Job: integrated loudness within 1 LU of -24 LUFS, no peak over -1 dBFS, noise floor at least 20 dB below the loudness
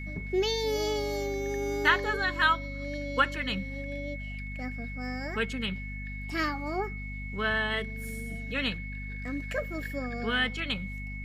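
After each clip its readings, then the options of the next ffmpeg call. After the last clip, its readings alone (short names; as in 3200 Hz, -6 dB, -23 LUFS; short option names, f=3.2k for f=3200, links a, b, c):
hum 50 Hz; harmonics up to 250 Hz; hum level -36 dBFS; steady tone 2200 Hz; tone level -41 dBFS; loudness -31.0 LUFS; peak -9.0 dBFS; loudness target -24.0 LUFS
-> -af "bandreject=f=50:t=h:w=6,bandreject=f=100:t=h:w=6,bandreject=f=150:t=h:w=6,bandreject=f=200:t=h:w=6,bandreject=f=250:t=h:w=6"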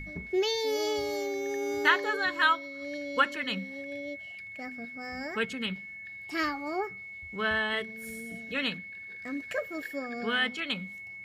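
hum none; steady tone 2200 Hz; tone level -41 dBFS
-> -af "bandreject=f=2.2k:w=30"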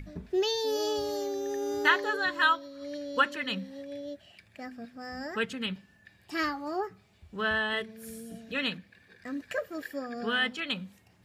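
steady tone none; loudness -31.0 LUFS; peak -9.5 dBFS; loudness target -24.0 LUFS
-> -af "volume=7dB"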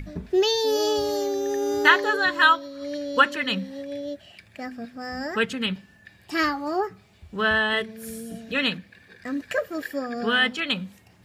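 loudness -24.0 LUFS; peak -2.5 dBFS; noise floor -55 dBFS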